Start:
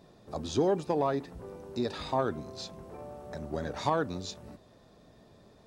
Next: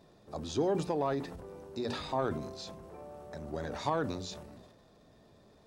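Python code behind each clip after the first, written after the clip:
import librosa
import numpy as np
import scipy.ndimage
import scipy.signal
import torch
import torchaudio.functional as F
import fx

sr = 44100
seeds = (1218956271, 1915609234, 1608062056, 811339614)

y = fx.hum_notches(x, sr, base_hz=60, count=4)
y = fx.transient(y, sr, attack_db=0, sustain_db=8)
y = y * librosa.db_to_amplitude(-3.5)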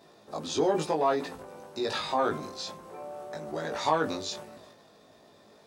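y = fx.highpass(x, sr, hz=480.0, slope=6)
y = fx.doubler(y, sr, ms=19.0, db=-2.0)
y = y * librosa.db_to_amplitude(6.0)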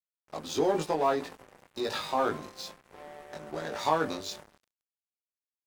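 y = np.sign(x) * np.maximum(np.abs(x) - 10.0 ** (-43.5 / 20.0), 0.0)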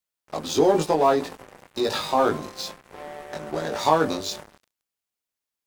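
y = fx.dynamic_eq(x, sr, hz=1900.0, q=0.82, threshold_db=-43.0, ratio=4.0, max_db=-4)
y = y * librosa.db_to_amplitude(8.5)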